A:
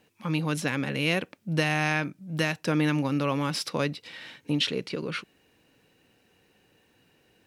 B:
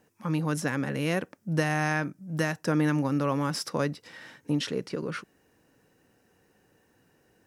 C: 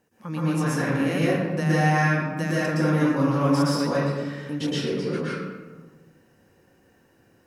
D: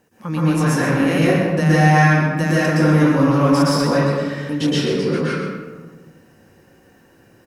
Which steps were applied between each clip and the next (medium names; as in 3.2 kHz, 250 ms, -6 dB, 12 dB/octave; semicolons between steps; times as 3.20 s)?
high-order bell 3.1 kHz -9 dB 1.2 oct
reverberation RT60 1.3 s, pre-delay 112 ms, DRR -8 dB; trim -4 dB
in parallel at -7 dB: saturation -23.5 dBFS, distortion -9 dB; on the sum: delay 131 ms -9.5 dB; trim +4.5 dB